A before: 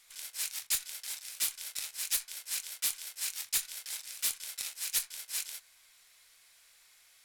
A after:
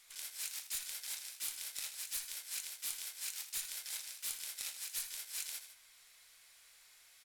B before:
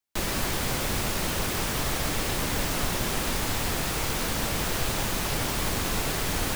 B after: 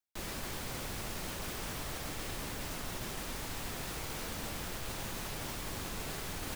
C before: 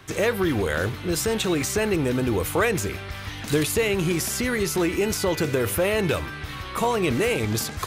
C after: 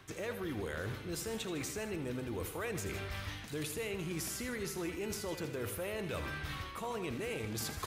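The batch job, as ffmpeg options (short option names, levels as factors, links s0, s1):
-af "areverse,acompressor=threshold=0.0141:ratio=6,areverse,aecho=1:1:80|155:0.282|0.2,volume=0.891"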